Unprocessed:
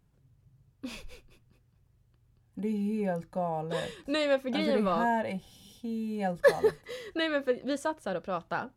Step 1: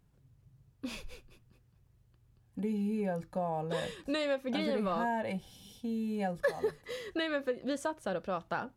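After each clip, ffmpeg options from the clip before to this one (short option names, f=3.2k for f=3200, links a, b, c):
-af "acompressor=threshold=-30dB:ratio=3"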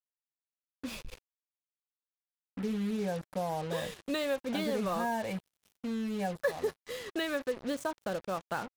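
-af "acrusher=bits=6:mix=0:aa=0.5"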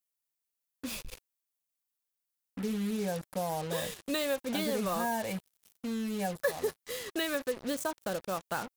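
-af "highshelf=f=6.4k:g=12"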